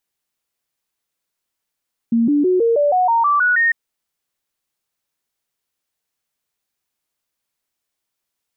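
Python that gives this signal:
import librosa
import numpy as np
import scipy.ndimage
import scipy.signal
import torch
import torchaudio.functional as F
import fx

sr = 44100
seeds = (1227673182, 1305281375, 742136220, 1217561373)

y = fx.stepped_sweep(sr, from_hz=231.0, direction='up', per_octave=3, tones=10, dwell_s=0.16, gap_s=0.0, level_db=-12.0)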